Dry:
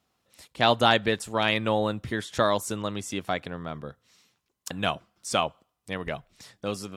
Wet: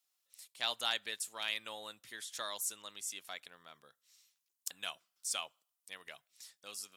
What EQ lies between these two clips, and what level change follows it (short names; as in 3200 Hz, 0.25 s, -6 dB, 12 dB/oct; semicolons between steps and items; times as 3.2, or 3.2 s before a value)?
differentiator; -2.0 dB